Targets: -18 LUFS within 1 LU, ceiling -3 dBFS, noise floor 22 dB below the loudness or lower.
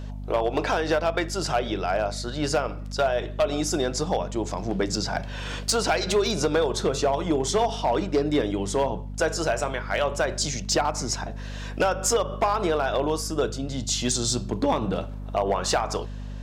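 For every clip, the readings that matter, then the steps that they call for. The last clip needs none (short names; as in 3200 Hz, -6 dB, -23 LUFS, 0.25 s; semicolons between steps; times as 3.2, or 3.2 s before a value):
clipped 0.9%; flat tops at -15.5 dBFS; hum 50 Hz; harmonics up to 250 Hz; hum level -32 dBFS; loudness -25.5 LUFS; peak -15.5 dBFS; loudness target -18.0 LUFS
-> clip repair -15.5 dBFS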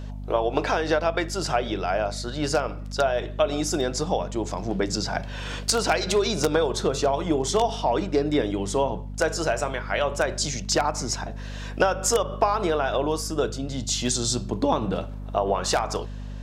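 clipped 0.0%; hum 50 Hz; harmonics up to 250 Hz; hum level -32 dBFS
-> notches 50/100/150/200/250 Hz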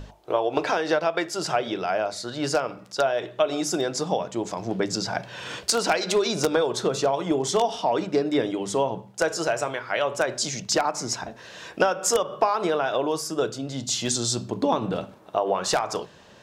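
hum none; loudness -25.5 LUFS; peak -6.0 dBFS; loudness target -18.0 LUFS
-> gain +7.5 dB; limiter -3 dBFS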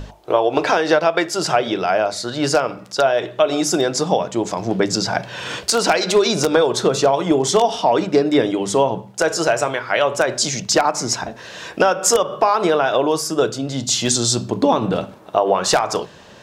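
loudness -18.5 LUFS; peak -3.0 dBFS; noise floor -42 dBFS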